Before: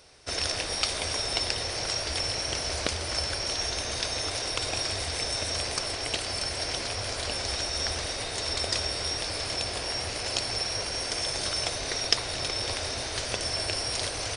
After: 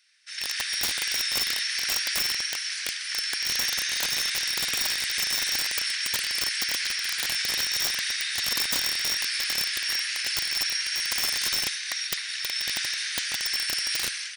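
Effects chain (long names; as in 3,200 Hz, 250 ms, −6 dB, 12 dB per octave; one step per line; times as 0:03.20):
high-shelf EQ 2,200 Hz −12 dB
automatic gain control gain up to 14 dB
elliptic high-pass filter 1,700 Hz, stop band 70 dB
wrap-around overflow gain 19.5 dB
level +1.5 dB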